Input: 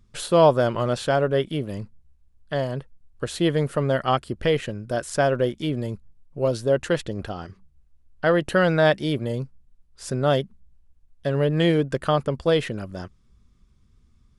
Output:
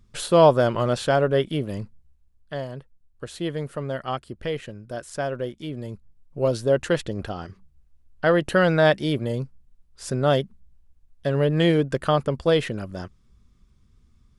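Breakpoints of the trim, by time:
1.81 s +1 dB
2.75 s -7 dB
5.69 s -7 dB
6.40 s +0.5 dB

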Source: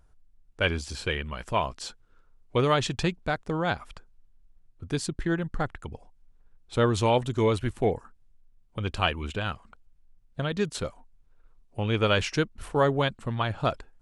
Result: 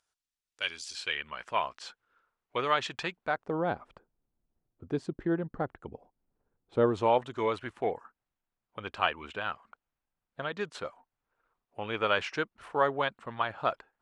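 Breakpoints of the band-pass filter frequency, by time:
band-pass filter, Q 0.74
0.85 s 5.4 kHz
1.33 s 1.6 kHz
3.14 s 1.6 kHz
3.63 s 440 Hz
6.81 s 440 Hz
7.28 s 1.2 kHz

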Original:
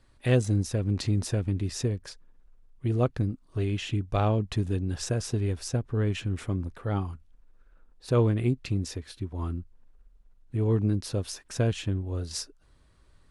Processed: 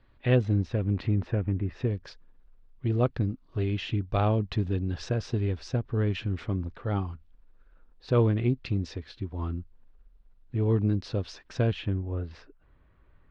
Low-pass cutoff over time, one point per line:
low-pass 24 dB/octave
0.72 s 3.5 kHz
1.67 s 2.1 kHz
1.99 s 4.6 kHz
11.64 s 4.6 kHz
12.04 s 2.6 kHz

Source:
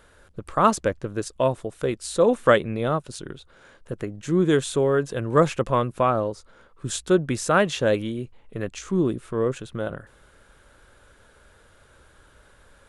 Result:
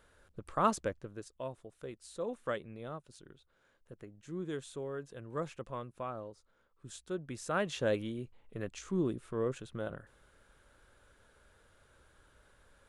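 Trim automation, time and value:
0.79 s -10.5 dB
1.32 s -19.5 dB
7.12 s -19.5 dB
7.85 s -10 dB

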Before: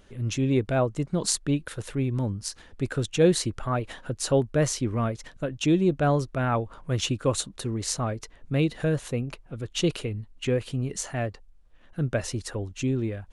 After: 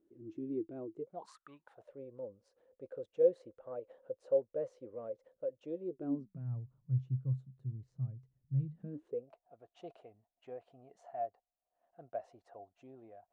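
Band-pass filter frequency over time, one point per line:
band-pass filter, Q 13
0.93 s 330 Hz
1.39 s 1.4 kHz
1.95 s 520 Hz
5.82 s 520 Hz
6.50 s 130 Hz
8.66 s 130 Hz
9.32 s 700 Hz

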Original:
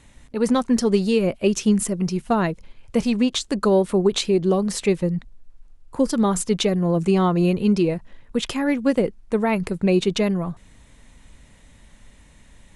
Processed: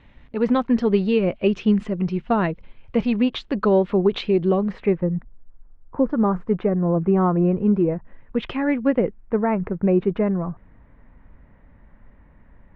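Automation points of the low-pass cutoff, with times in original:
low-pass 24 dB/octave
4.44 s 3.2 kHz
5.11 s 1.6 kHz
7.89 s 1.6 kHz
8.49 s 2.9 kHz
9.56 s 1.7 kHz

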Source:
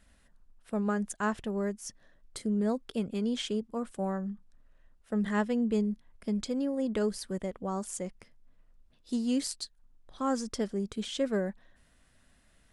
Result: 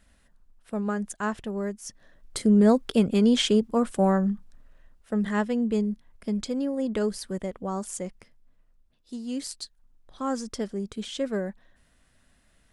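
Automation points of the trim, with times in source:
1.82 s +1.5 dB
2.51 s +11 dB
4.27 s +11 dB
5.28 s +3 dB
8.06 s +3 dB
9.18 s -5.5 dB
9.59 s +1 dB

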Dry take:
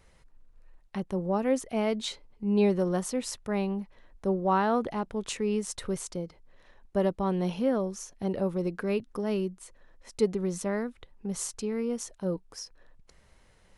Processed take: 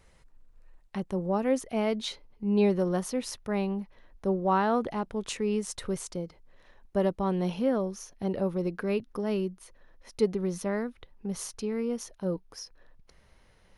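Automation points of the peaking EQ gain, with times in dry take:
peaking EQ 7.7 kHz 0.23 oct
1.22 s +1.5 dB
1.91 s -9.5 dB
4.42 s -9.5 dB
4.96 s -3 dB
7.37 s -3 dB
7.85 s -14 dB

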